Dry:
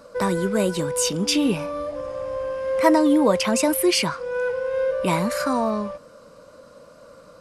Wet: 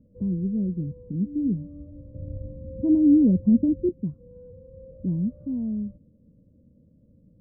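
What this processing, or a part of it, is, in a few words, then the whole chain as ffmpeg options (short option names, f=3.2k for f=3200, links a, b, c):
the neighbour's flat through the wall: -filter_complex "[0:a]asettb=1/sr,asplit=3[a][b][c];[a]atrim=end=2.144[d];[b]atrim=start=2.14:end=3.89,asetpts=PTS-STARTPTS,afade=t=in:d=0.004:c=qsin,afade=t=out:st=1.746:d=0.004:c=qsin,tiltshelf=f=1.3k:g=8.5[e];[c]atrim=start=3.886[f];[d][e]acrossfade=d=0.004:c1=hsin:c2=qsin[g];[g][f]acrossfade=d=0.004:c1=qsin:c2=hsin,lowpass=f=260:w=0.5412,lowpass=f=260:w=1.3066,equalizer=f=86:t=o:w=0.69:g=7"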